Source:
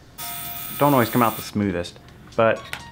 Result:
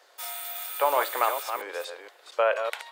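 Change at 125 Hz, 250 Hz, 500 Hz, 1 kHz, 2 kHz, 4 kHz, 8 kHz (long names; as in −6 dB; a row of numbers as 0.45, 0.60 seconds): below −40 dB, −28.0 dB, −5.0 dB, −4.0 dB, −4.0 dB, −4.0 dB, −4.0 dB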